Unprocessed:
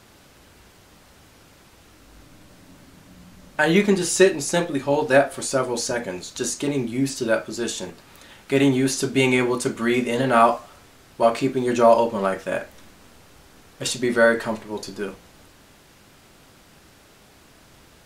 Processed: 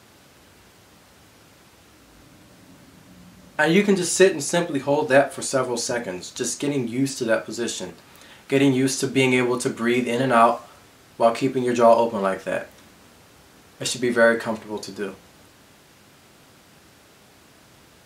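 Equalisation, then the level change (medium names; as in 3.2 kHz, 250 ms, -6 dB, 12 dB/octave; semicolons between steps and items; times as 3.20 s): high-pass 73 Hz; 0.0 dB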